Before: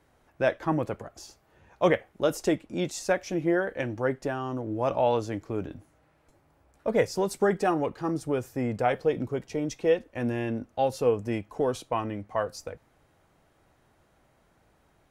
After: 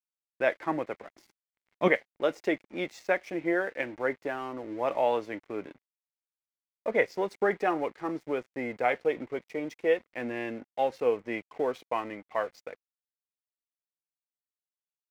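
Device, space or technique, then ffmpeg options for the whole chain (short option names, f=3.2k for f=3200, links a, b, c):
pocket radio on a weak battery: -filter_complex "[0:a]asettb=1/sr,asplit=3[a][b][c];[a]atrim=end=1.114[d];[b]atrim=start=1.11:end=1.88,asetpts=PTS-STARTPTS,afade=t=in:d=0.004:c=qsin,afade=t=out:st=0.766:d=0.004:c=qsin,lowshelf=f=350:t=q:w=1.5:g=10[e];[c]atrim=start=1.876[f];[d][e]acrossfade=d=0.004:c1=hsin:c2=qsin[g];[g][f]acrossfade=d=0.004:c1=qsin:c2=hsin,highpass=290,lowpass=3.8k,aeval=exprs='sgn(val(0))*max(abs(val(0))-0.00282,0)':c=same,equalizer=f=2.1k:t=o:w=0.39:g=9.5,volume=-1.5dB"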